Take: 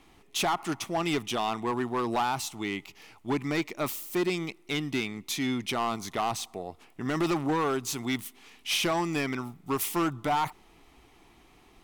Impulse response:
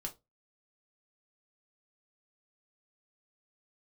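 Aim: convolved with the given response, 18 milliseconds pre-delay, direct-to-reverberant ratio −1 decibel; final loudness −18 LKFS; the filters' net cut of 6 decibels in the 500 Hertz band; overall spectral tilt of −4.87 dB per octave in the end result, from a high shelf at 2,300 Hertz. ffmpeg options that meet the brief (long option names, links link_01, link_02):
-filter_complex "[0:a]equalizer=frequency=500:width_type=o:gain=-9,highshelf=frequency=2300:gain=-5.5,asplit=2[link_01][link_02];[1:a]atrim=start_sample=2205,adelay=18[link_03];[link_02][link_03]afir=irnorm=-1:irlink=0,volume=2.5dB[link_04];[link_01][link_04]amix=inputs=2:normalize=0,volume=11.5dB"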